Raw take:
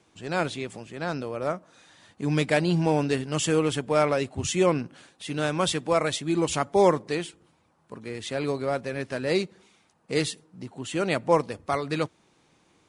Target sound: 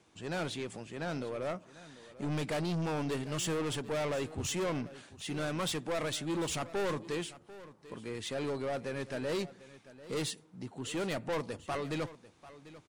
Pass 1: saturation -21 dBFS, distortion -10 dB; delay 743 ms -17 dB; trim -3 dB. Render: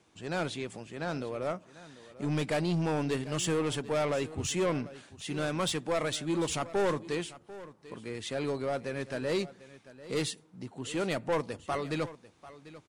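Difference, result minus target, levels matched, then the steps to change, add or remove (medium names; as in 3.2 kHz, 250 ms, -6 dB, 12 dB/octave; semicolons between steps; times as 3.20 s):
saturation: distortion -4 dB
change: saturation -27.5 dBFS, distortion -6 dB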